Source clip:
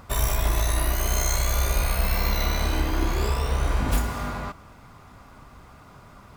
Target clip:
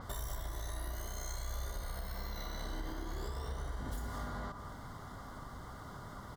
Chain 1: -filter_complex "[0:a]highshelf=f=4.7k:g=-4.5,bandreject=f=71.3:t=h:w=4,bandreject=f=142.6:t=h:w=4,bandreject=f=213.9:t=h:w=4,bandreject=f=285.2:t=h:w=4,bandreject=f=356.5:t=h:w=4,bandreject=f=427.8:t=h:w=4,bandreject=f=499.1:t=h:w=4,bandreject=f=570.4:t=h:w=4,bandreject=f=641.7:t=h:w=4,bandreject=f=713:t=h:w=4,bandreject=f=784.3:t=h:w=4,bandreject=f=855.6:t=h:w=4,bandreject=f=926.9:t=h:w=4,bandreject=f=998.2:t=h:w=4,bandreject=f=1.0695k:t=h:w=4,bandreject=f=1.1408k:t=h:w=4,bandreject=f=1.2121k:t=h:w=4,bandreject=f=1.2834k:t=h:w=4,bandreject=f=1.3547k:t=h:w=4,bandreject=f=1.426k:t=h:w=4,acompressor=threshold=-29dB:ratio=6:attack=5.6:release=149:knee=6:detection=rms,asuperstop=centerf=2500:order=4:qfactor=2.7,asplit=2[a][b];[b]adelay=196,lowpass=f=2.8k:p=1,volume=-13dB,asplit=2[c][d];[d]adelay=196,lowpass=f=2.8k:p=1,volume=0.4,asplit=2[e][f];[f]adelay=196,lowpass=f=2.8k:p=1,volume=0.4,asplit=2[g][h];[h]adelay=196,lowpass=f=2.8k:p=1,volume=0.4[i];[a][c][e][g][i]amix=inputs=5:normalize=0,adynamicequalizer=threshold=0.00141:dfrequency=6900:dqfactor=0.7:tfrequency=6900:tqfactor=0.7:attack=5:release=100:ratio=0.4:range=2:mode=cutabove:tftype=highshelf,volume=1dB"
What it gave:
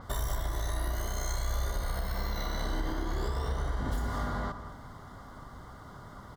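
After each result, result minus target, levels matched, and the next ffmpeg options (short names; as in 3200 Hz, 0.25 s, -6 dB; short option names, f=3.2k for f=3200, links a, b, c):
compressor: peak gain reduction -8.5 dB; 8000 Hz band -3.5 dB
-filter_complex "[0:a]highshelf=f=4.7k:g=-4.5,bandreject=f=71.3:t=h:w=4,bandreject=f=142.6:t=h:w=4,bandreject=f=213.9:t=h:w=4,bandreject=f=285.2:t=h:w=4,bandreject=f=356.5:t=h:w=4,bandreject=f=427.8:t=h:w=4,bandreject=f=499.1:t=h:w=4,bandreject=f=570.4:t=h:w=4,bandreject=f=641.7:t=h:w=4,bandreject=f=713:t=h:w=4,bandreject=f=784.3:t=h:w=4,bandreject=f=855.6:t=h:w=4,bandreject=f=926.9:t=h:w=4,bandreject=f=998.2:t=h:w=4,bandreject=f=1.0695k:t=h:w=4,bandreject=f=1.1408k:t=h:w=4,bandreject=f=1.2121k:t=h:w=4,bandreject=f=1.2834k:t=h:w=4,bandreject=f=1.3547k:t=h:w=4,bandreject=f=1.426k:t=h:w=4,acompressor=threshold=-39dB:ratio=6:attack=5.6:release=149:knee=6:detection=rms,asuperstop=centerf=2500:order=4:qfactor=2.7,asplit=2[a][b];[b]adelay=196,lowpass=f=2.8k:p=1,volume=-13dB,asplit=2[c][d];[d]adelay=196,lowpass=f=2.8k:p=1,volume=0.4,asplit=2[e][f];[f]adelay=196,lowpass=f=2.8k:p=1,volume=0.4,asplit=2[g][h];[h]adelay=196,lowpass=f=2.8k:p=1,volume=0.4[i];[a][c][e][g][i]amix=inputs=5:normalize=0,adynamicequalizer=threshold=0.00141:dfrequency=6900:dqfactor=0.7:tfrequency=6900:tqfactor=0.7:attack=5:release=100:ratio=0.4:range=2:mode=cutabove:tftype=highshelf,volume=1dB"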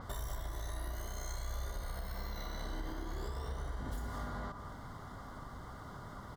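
8000 Hz band -2.5 dB
-filter_complex "[0:a]bandreject=f=71.3:t=h:w=4,bandreject=f=142.6:t=h:w=4,bandreject=f=213.9:t=h:w=4,bandreject=f=285.2:t=h:w=4,bandreject=f=356.5:t=h:w=4,bandreject=f=427.8:t=h:w=4,bandreject=f=499.1:t=h:w=4,bandreject=f=570.4:t=h:w=4,bandreject=f=641.7:t=h:w=4,bandreject=f=713:t=h:w=4,bandreject=f=784.3:t=h:w=4,bandreject=f=855.6:t=h:w=4,bandreject=f=926.9:t=h:w=4,bandreject=f=998.2:t=h:w=4,bandreject=f=1.0695k:t=h:w=4,bandreject=f=1.1408k:t=h:w=4,bandreject=f=1.2121k:t=h:w=4,bandreject=f=1.2834k:t=h:w=4,bandreject=f=1.3547k:t=h:w=4,bandreject=f=1.426k:t=h:w=4,acompressor=threshold=-39dB:ratio=6:attack=5.6:release=149:knee=6:detection=rms,asuperstop=centerf=2500:order=4:qfactor=2.7,asplit=2[a][b];[b]adelay=196,lowpass=f=2.8k:p=1,volume=-13dB,asplit=2[c][d];[d]adelay=196,lowpass=f=2.8k:p=1,volume=0.4,asplit=2[e][f];[f]adelay=196,lowpass=f=2.8k:p=1,volume=0.4,asplit=2[g][h];[h]adelay=196,lowpass=f=2.8k:p=1,volume=0.4[i];[a][c][e][g][i]amix=inputs=5:normalize=0,adynamicequalizer=threshold=0.00141:dfrequency=6900:dqfactor=0.7:tfrequency=6900:tqfactor=0.7:attack=5:release=100:ratio=0.4:range=2:mode=cutabove:tftype=highshelf,volume=1dB"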